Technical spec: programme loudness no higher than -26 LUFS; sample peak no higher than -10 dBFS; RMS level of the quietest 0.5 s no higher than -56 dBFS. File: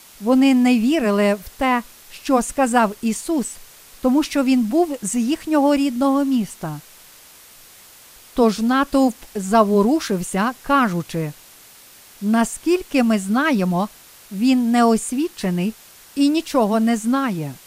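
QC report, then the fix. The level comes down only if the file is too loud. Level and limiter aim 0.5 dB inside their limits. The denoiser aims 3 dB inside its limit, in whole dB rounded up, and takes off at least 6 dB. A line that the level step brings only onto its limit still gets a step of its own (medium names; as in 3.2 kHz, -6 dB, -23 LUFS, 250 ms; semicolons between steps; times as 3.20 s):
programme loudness -19.0 LUFS: fail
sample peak -2.5 dBFS: fail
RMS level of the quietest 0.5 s -46 dBFS: fail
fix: noise reduction 6 dB, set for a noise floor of -46 dBFS; trim -7.5 dB; peak limiter -10.5 dBFS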